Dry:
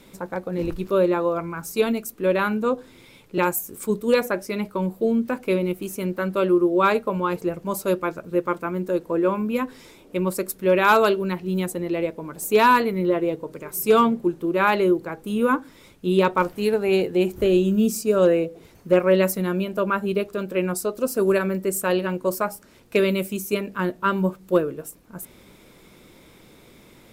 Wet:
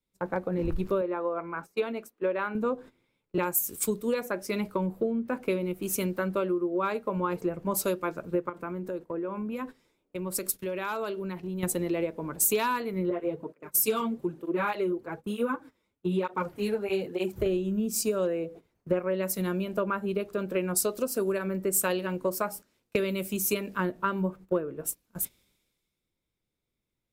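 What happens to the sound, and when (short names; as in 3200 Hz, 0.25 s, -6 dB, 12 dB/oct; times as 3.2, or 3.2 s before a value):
1.01–2.55 tone controls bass -12 dB, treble -14 dB
8.49–11.63 compressor, threshold -30 dBFS
13.1–17.46 tape flanging out of phase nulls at 1.1 Hz, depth 7.9 ms
whole clip: gate -38 dBFS, range -15 dB; compressor 16:1, threshold -27 dBFS; three-band expander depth 70%; gain +2 dB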